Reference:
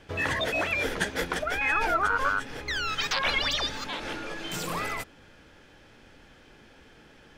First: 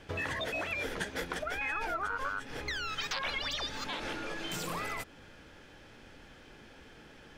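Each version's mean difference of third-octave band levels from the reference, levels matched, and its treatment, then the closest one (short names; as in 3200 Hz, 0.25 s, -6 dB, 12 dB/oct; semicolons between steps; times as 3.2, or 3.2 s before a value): 3.5 dB: compressor 3:1, threshold -35 dBFS, peak gain reduction 10.5 dB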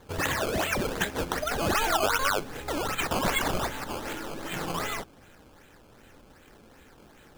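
5.5 dB: decimation with a swept rate 16×, swing 100% 2.6 Hz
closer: first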